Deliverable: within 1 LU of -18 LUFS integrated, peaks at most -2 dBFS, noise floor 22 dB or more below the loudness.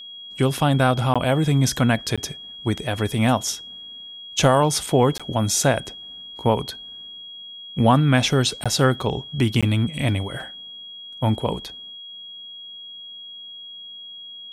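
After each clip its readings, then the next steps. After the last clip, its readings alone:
dropouts 5; longest dropout 16 ms; steady tone 3300 Hz; tone level -36 dBFS; loudness -21.0 LUFS; peak -5.0 dBFS; loudness target -18.0 LUFS
-> interpolate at 1.14/2.16/5.18/8.64/9.61, 16 ms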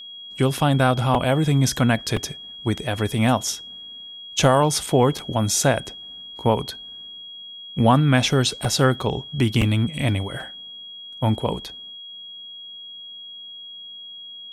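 dropouts 0; steady tone 3300 Hz; tone level -36 dBFS
-> notch 3300 Hz, Q 30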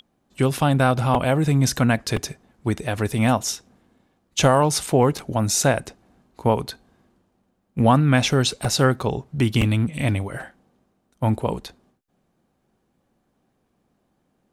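steady tone none; loudness -21.0 LUFS; peak -5.5 dBFS; loudness target -18.0 LUFS
-> gain +3 dB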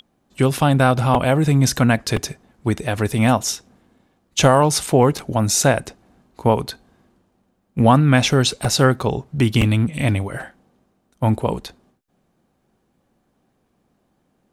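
loudness -18.0 LUFS; peak -2.5 dBFS; noise floor -67 dBFS

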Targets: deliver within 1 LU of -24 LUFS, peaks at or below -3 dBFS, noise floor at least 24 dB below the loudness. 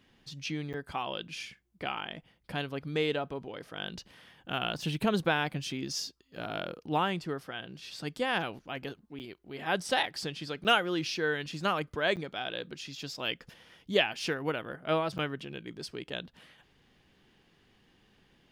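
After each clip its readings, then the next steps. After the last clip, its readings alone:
dropouts 5; longest dropout 8.9 ms; loudness -33.5 LUFS; peak -11.0 dBFS; loudness target -24.0 LUFS
-> interpolate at 0.73/9.19/10.64/12.16/15.18, 8.9 ms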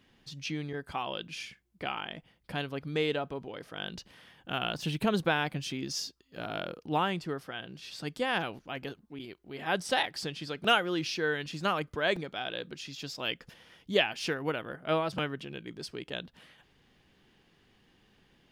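dropouts 0; loudness -33.5 LUFS; peak -11.0 dBFS; loudness target -24.0 LUFS
-> gain +9.5 dB; limiter -3 dBFS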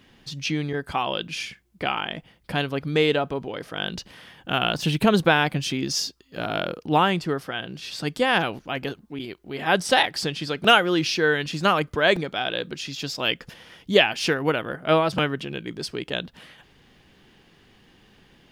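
loudness -24.0 LUFS; peak -3.0 dBFS; noise floor -57 dBFS

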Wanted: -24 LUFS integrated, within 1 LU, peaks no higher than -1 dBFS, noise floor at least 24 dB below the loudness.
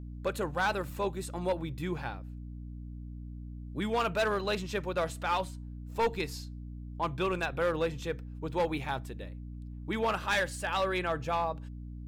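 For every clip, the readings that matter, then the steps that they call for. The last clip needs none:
clipped 1.2%; flat tops at -23.0 dBFS; hum 60 Hz; harmonics up to 300 Hz; hum level -40 dBFS; loudness -32.5 LUFS; peak -23.0 dBFS; loudness target -24.0 LUFS
-> clip repair -23 dBFS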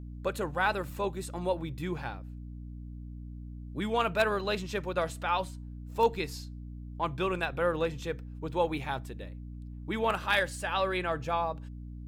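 clipped 0.0%; hum 60 Hz; harmonics up to 300 Hz; hum level -40 dBFS
-> notches 60/120/180/240/300 Hz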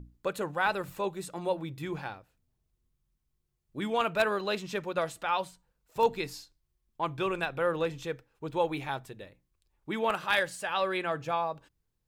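hum none; loudness -32.0 LUFS; peak -13.0 dBFS; loudness target -24.0 LUFS
-> gain +8 dB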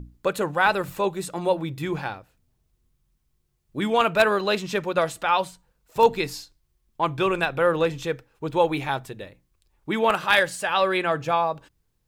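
loudness -24.0 LUFS; peak -5.0 dBFS; noise floor -71 dBFS

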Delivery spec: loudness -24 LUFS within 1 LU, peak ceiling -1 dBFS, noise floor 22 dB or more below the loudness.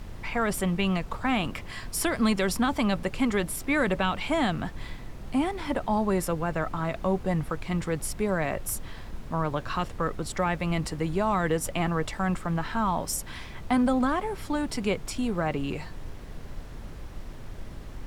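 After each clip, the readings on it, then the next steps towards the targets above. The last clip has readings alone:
noise floor -41 dBFS; noise floor target -50 dBFS; loudness -28.0 LUFS; peak -12.0 dBFS; loudness target -24.0 LUFS
-> noise print and reduce 9 dB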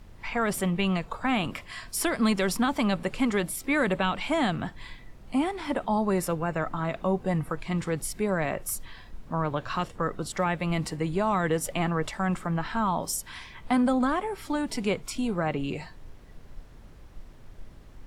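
noise floor -48 dBFS; noise floor target -51 dBFS
-> noise print and reduce 6 dB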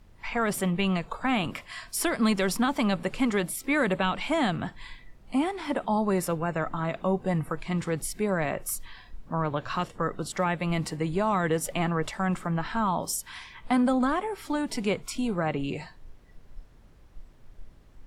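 noise floor -53 dBFS; loudness -28.5 LUFS; peak -12.5 dBFS; loudness target -24.0 LUFS
-> gain +4.5 dB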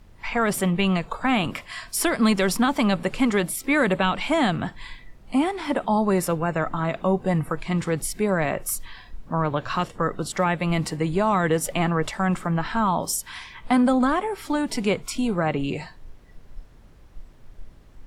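loudness -24.0 LUFS; peak -8.0 dBFS; noise floor -49 dBFS

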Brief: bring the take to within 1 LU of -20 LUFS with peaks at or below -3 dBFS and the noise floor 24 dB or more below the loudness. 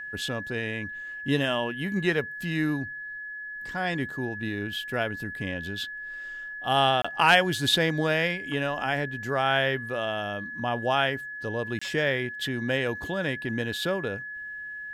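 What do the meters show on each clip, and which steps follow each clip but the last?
dropouts 2; longest dropout 25 ms; steady tone 1700 Hz; tone level -35 dBFS; loudness -27.5 LUFS; peak -8.5 dBFS; loudness target -20.0 LUFS
-> interpolate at 7.02/11.79, 25 ms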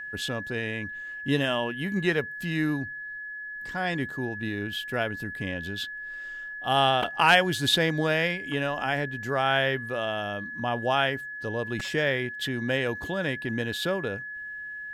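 dropouts 0; steady tone 1700 Hz; tone level -35 dBFS
-> notch 1700 Hz, Q 30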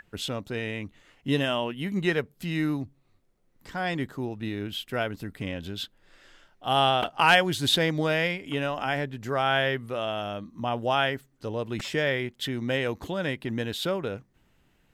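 steady tone none; loudness -27.5 LUFS; peak -8.0 dBFS; loudness target -20.0 LUFS
-> gain +7.5 dB; limiter -3 dBFS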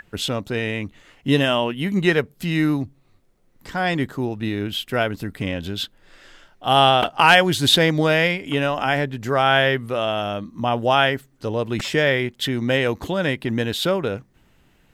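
loudness -20.5 LUFS; peak -3.0 dBFS; noise floor -58 dBFS

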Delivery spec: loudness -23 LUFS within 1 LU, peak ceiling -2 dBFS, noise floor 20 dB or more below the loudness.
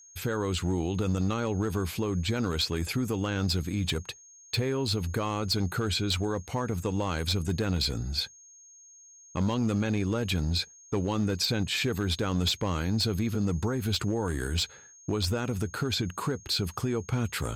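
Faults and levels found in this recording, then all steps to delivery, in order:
clipped 0.9%; flat tops at -21.0 dBFS; steady tone 6500 Hz; tone level -51 dBFS; loudness -29.5 LUFS; peak -21.0 dBFS; loudness target -23.0 LUFS
-> clip repair -21 dBFS; notch 6500 Hz, Q 30; gain +6.5 dB

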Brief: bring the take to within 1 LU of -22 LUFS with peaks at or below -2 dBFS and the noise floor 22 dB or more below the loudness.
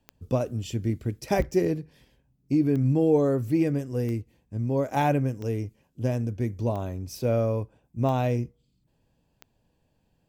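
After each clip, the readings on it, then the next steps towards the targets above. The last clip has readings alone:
clicks 8; loudness -27.0 LUFS; peak -11.0 dBFS; loudness target -22.0 LUFS
-> de-click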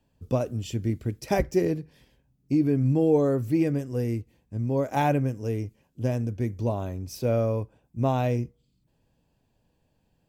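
clicks 0; loudness -27.0 LUFS; peak -11.0 dBFS; loudness target -22.0 LUFS
-> gain +5 dB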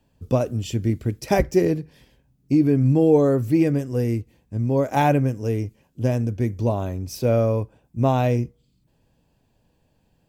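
loudness -22.0 LUFS; peak -6.0 dBFS; noise floor -66 dBFS

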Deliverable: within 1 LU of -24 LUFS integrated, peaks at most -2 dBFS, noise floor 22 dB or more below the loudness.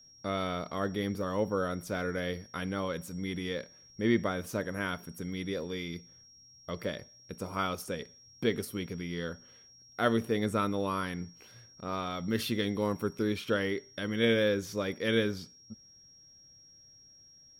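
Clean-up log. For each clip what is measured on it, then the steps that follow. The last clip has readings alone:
steady tone 5600 Hz; tone level -55 dBFS; loudness -33.0 LUFS; peak -15.0 dBFS; loudness target -24.0 LUFS
-> notch 5600 Hz, Q 30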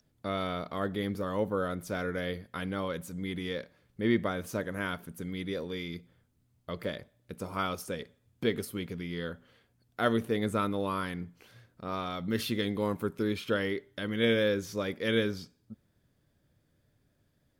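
steady tone none; loudness -33.0 LUFS; peak -15.0 dBFS; loudness target -24.0 LUFS
-> gain +9 dB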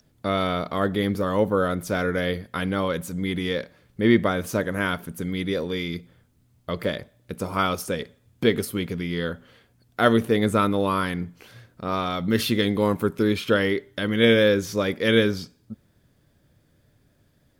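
loudness -24.0 LUFS; peak -6.0 dBFS; noise floor -63 dBFS

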